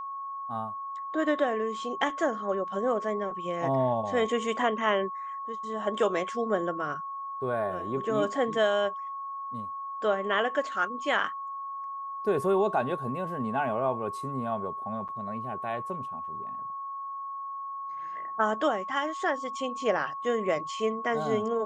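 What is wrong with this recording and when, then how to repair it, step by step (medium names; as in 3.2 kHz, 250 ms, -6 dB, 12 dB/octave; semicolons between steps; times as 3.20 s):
whine 1.1 kHz -34 dBFS
15.08–15.09 s: dropout 8.2 ms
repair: band-stop 1.1 kHz, Q 30; interpolate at 15.08 s, 8.2 ms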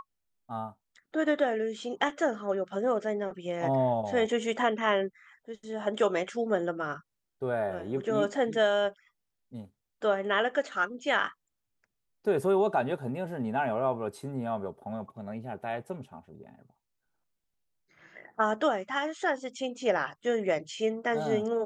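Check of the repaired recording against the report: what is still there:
nothing left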